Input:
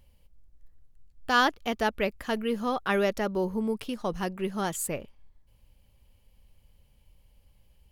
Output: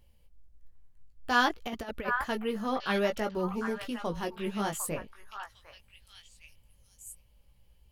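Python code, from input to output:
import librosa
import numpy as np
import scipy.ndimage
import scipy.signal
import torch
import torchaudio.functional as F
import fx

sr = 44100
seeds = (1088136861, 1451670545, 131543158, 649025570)

p1 = fx.chorus_voices(x, sr, voices=2, hz=0.54, base_ms=18, depth_ms=1.6, mix_pct=35)
p2 = fx.over_compress(p1, sr, threshold_db=-33.0, ratio=-0.5, at=(1.48, 2.23), fade=0.02)
y = p2 + fx.echo_stepped(p2, sr, ms=753, hz=1300.0, octaves=1.4, feedback_pct=70, wet_db=-4.0, dry=0)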